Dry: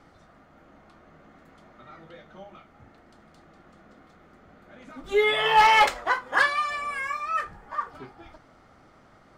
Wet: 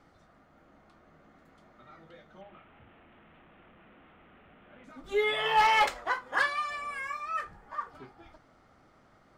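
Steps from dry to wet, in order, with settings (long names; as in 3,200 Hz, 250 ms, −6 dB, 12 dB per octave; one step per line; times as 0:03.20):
0:02.41–0:04.84: linear delta modulator 16 kbit/s, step −46 dBFS
level −6 dB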